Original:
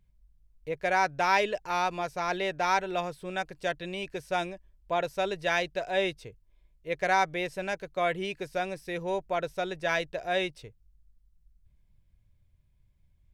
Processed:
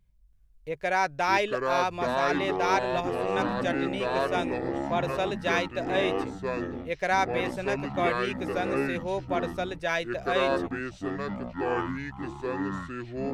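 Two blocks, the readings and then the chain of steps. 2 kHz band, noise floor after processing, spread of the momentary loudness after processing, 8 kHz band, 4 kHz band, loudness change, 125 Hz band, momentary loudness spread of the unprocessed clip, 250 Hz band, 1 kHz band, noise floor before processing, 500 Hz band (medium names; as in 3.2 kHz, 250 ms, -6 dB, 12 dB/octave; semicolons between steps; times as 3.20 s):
+1.5 dB, -53 dBFS, 8 LU, +0.5 dB, +1.0 dB, +1.5 dB, +7.0 dB, 10 LU, +8.5 dB, +1.5 dB, -66 dBFS, +3.5 dB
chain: ever faster or slower copies 330 ms, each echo -6 st, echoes 3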